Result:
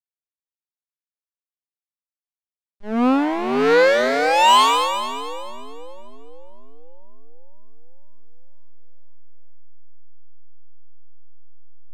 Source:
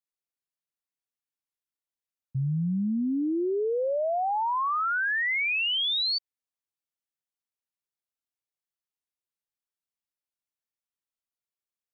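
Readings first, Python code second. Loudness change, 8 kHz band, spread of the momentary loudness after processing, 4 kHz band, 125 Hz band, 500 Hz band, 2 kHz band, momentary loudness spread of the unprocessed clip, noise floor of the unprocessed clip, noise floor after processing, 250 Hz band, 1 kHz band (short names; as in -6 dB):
+9.0 dB, n/a, 17 LU, +3.5 dB, under -10 dB, +10.5 dB, +4.0 dB, 5 LU, under -85 dBFS, under -85 dBFS, +6.5 dB, +11.5 dB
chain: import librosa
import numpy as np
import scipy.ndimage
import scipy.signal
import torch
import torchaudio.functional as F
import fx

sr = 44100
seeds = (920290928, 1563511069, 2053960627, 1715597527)

y = fx.graphic_eq_10(x, sr, hz=(250, 500, 1000, 2000, 4000), db=(12, 10, 12, 7, -8))
y = fx.cheby_harmonics(y, sr, harmonics=(3, 6, 8), levels_db=(-8, -20, -16), full_scale_db=-8.0)
y = fx.backlash(y, sr, play_db=-19.0)
y = fx.echo_split(y, sr, split_hz=570.0, low_ms=511, high_ms=217, feedback_pct=52, wet_db=-7.5)
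y = fx.doppler_dist(y, sr, depth_ms=0.26)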